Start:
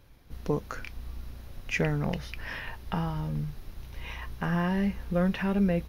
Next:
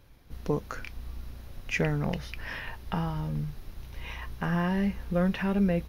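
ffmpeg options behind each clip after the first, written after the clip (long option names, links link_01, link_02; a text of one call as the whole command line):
ffmpeg -i in.wav -af anull out.wav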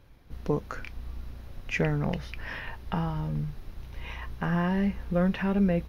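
ffmpeg -i in.wav -af "highshelf=frequency=4600:gain=-7.5,volume=1dB" out.wav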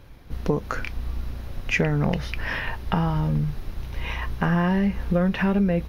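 ffmpeg -i in.wav -af "acompressor=threshold=-27dB:ratio=6,volume=9dB" out.wav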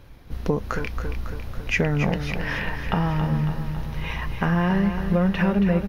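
ffmpeg -i in.wav -af "aecho=1:1:276|552|828|1104|1380|1656|1932|2208:0.376|0.226|0.135|0.0812|0.0487|0.0292|0.0175|0.0105" out.wav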